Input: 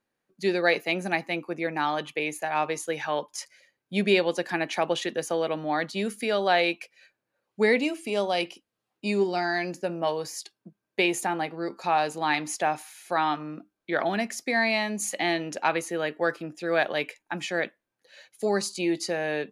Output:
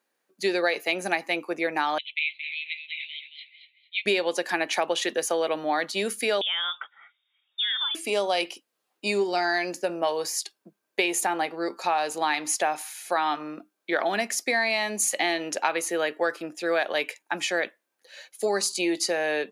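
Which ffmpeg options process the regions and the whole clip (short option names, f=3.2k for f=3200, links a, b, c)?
-filter_complex "[0:a]asettb=1/sr,asplit=3[a][b][c];[a]atrim=end=1.984[d];[b]atrim=start=1.98:end=4.06,asetpts=PTS-STARTPTS,afade=t=in:d=0.004:c=qsin,afade=t=out:st=2.076:d=0.004:c=qsin,aecho=1:1:224|448|672:0.335|0.0971|0.0282,atrim=end_sample=91728,asoftclip=type=hard:threshold=-18.5dB,asuperpass=centerf=2900:order=20:qfactor=1.4[e];[c]atrim=start=4.056[f];[d][e]acrossfade=d=0.004:c1=hsin:c2=qsin[g];[g][f]acrossfade=d=0.004:c1=qsin:c2=hsin,asettb=1/sr,asplit=3[h][i][j];[h]atrim=end=6.414[k];[i]atrim=start=6.41:end=7.95,asetpts=PTS-STARTPTS,afade=t=in:d=0.004:c=qsin,afade=t=out:st=1.536:d=0.004:c=qsin,equalizer=f=81:w=1.2:g=14.5,acompressor=threshold=-30dB:ratio=5:attack=3.2:release=140:knee=1:detection=peak,lowpass=f=3.2k:t=q:w=0.5098,lowpass=f=3.2k:t=q:w=0.6013,lowpass=f=3.2k:t=q:w=0.9,lowpass=f=3.2k:t=q:w=2.563,afreqshift=-3800[l];[j]atrim=start=7.946[m];[k][l]acrossfade=d=0.004:c1=hsin:c2=qsin[n];[n][m]acrossfade=d=0.004:c1=qsin:c2=hsin,highpass=340,highshelf=f=5.7k:g=5.5,acompressor=threshold=-25dB:ratio=6,volume=4.5dB"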